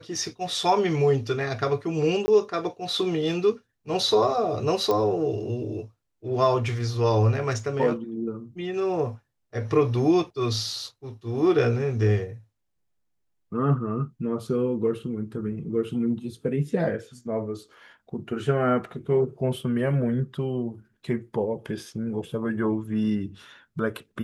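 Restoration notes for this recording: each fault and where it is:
0:02.26–0:02.28: drop-out 20 ms
0:04.91: click −13 dBFS

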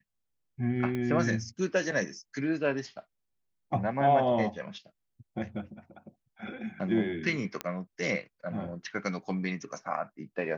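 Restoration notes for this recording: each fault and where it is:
0:00.95: click −22 dBFS
0:07.61: click −16 dBFS

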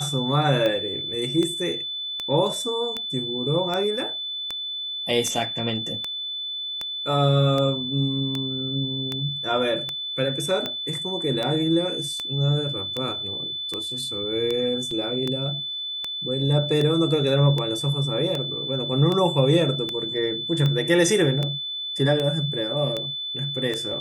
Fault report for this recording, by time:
scratch tick 78 rpm −13 dBFS
whistle 3,500 Hz −28 dBFS
0:14.91: drop-out 3.2 ms

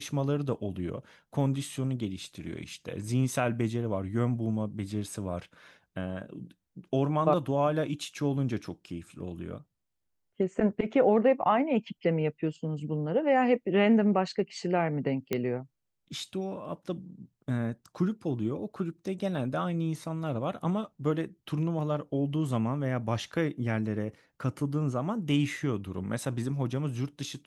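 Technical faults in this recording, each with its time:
0:15.33: click −15 dBFS

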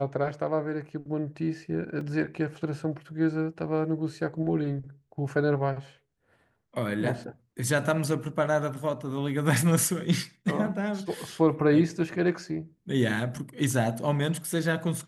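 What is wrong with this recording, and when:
0:02.01: drop-out 3 ms

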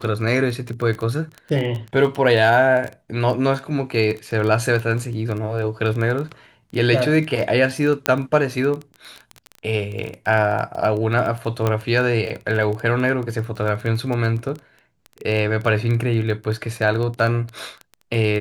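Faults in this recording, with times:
surface crackle 13 per second −24 dBFS
0:08.06: click −2 dBFS
0:11.67: click −8 dBFS

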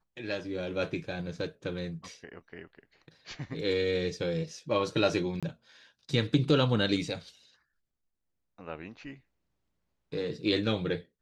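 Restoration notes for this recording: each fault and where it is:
0:05.40–0:05.43: drop-out 26 ms

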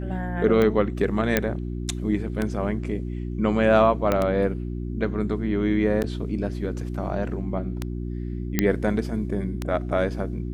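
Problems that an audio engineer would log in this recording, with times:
mains hum 60 Hz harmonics 6 −30 dBFS
scratch tick 33 1/3 rpm −12 dBFS
0:01.37: click −5 dBFS
0:04.12: click −9 dBFS
0:06.03–0:06.04: drop-out 8.6 ms
0:08.59: click −5 dBFS

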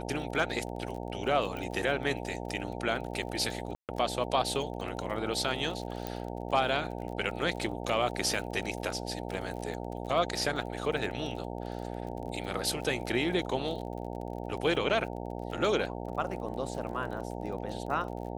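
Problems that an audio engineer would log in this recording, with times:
mains buzz 60 Hz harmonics 15 −38 dBFS
surface crackle 38 per second −39 dBFS
0:01.57: click −25 dBFS
0:03.75–0:03.89: drop-out 138 ms
0:06.07: click −19 dBFS
0:08.34: drop-out 2.5 ms

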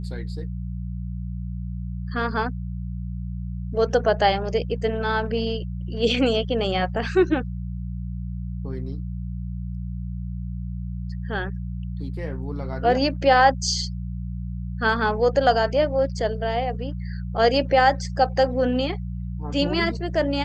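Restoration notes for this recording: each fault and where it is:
mains hum 60 Hz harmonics 3 −30 dBFS

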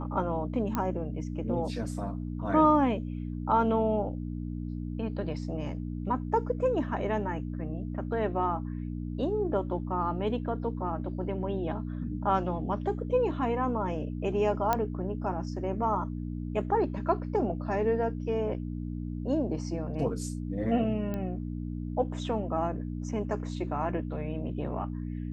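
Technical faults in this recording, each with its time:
mains hum 60 Hz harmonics 5 −35 dBFS
0:00.75: click −16 dBFS
0:14.73: click −12 dBFS
0:21.14: click −22 dBFS

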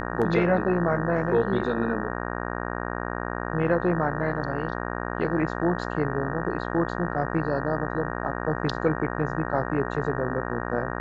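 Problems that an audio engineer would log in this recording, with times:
mains buzz 60 Hz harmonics 31 −31 dBFS

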